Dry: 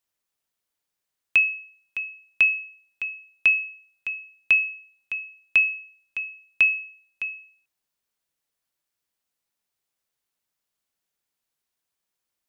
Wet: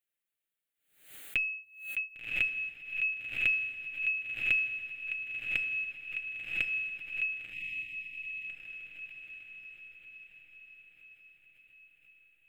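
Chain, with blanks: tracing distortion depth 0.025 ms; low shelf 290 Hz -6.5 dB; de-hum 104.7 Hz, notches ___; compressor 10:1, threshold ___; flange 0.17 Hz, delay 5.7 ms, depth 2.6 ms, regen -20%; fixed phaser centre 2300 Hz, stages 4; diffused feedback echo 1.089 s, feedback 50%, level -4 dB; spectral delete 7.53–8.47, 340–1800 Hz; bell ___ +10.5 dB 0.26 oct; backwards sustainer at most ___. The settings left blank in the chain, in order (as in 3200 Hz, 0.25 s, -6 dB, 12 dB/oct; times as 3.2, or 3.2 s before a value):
3, -25 dBFS, 890 Hz, 100 dB/s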